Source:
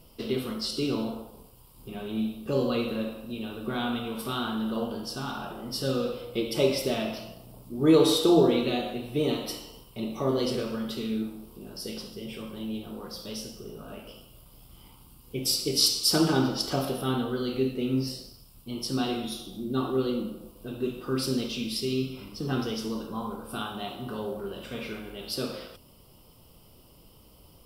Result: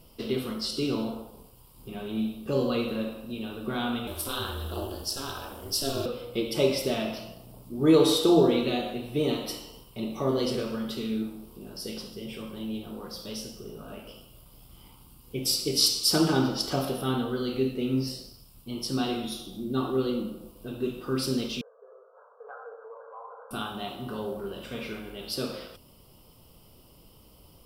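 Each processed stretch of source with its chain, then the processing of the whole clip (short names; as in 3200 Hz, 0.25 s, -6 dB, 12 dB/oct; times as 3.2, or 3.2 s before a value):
4.07–6.06 tone controls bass +1 dB, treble +12 dB + ring modulator 140 Hz + notches 60/120/180/240/300/360/420 Hz
21.61–23.51 brick-wall FIR band-pass 430–1700 Hz + compressor 2:1, threshold -44 dBFS
whole clip: dry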